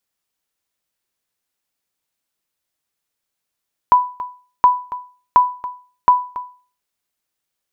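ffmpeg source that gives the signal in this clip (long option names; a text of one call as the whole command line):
ffmpeg -f lavfi -i "aevalsrc='0.708*(sin(2*PI*992*mod(t,0.72))*exp(-6.91*mod(t,0.72)/0.39)+0.158*sin(2*PI*992*max(mod(t,0.72)-0.28,0))*exp(-6.91*max(mod(t,0.72)-0.28,0)/0.39))':duration=2.88:sample_rate=44100" out.wav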